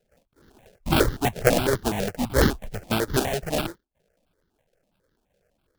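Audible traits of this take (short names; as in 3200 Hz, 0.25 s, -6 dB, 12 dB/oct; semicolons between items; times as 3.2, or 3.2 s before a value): aliases and images of a low sample rate 1100 Hz, jitter 20%; notches that jump at a steady rate 12 Hz 290–2500 Hz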